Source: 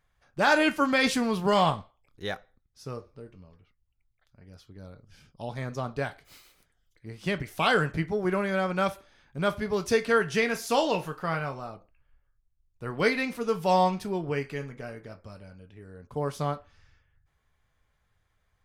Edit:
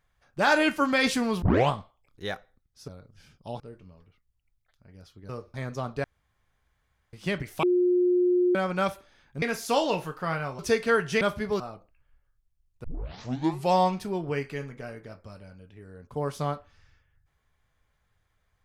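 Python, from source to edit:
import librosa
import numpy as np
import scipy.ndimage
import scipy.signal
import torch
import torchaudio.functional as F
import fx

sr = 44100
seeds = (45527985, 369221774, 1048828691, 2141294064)

y = fx.edit(x, sr, fx.tape_start(start_s=1.42, length_s=0.28),
    fx.swap(start_s=2.88, length_s=0.25, other_s=4.82, other_length_s=0.72),
    fx.room_tone_fill(start_s=6.04, length_s=1.09),
    fx.bleep(start_s=7.63, length_s=0.92, hz=358.0, db=-19.0),
    fx.swap(start_s=9.42, length_s=0.39, other_s=10.43, other_length_s=1.17),
    fx.tape_start(start_s=12.84, length_s=0.88), tone=tone)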